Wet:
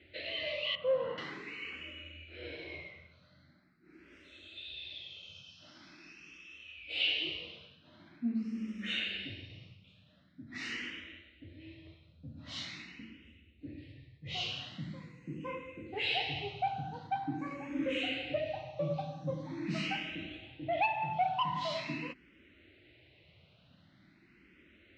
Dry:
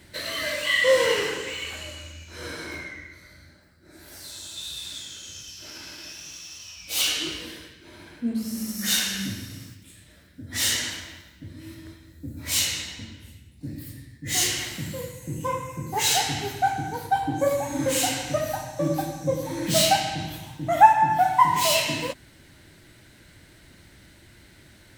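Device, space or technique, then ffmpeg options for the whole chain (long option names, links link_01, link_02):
barber-pole phaser into a guitar amplifier: -filter_complex "[0:a]asettb=1/sr,asplit=3[link_01][link_02][link_03];[link_01]atrim=end=0.754[link_04];[link_02]atrim=start=0.75:end=1.18,asetpts=PTS-STARTPTS,afade=type=in:duration=0.004:curve=qsin,afade=type=out:start_time=0.426:duration=0.004:curve=qsin,lowpass=1200[link_05];[link_03]atrim=start=1.176[link_06];[link_04][link_05]acrossfade=duration=0.004:curve1=hsin:curve2=qsin[link_07];[link_07][link_06]acrossfade=duration=0.004:curve1=qsin:curve2=hsin,asplit=2[link_08][link_09];[link_09]afreqshift=0.44[link_10];[link_08][link_10]amix=inputs=2:normalize=1,asoftclip=type=tanh:threshold=-14.5dB,highpass=81,equalizer=frequency=110:width_type=q:width=4:gain=-5,equalizer=frequency=920:width_type=q:width=4:gain=-9,equalizer=frequency=1600:width_type=q:width=4:gain=-7,equalizer=frequency=2600:width_type=q:width=4:gain=7,lowpass=frequency=3500:width=0.5412,lowpass=frequency=3500:width=1.3066,volume=-5.5dB"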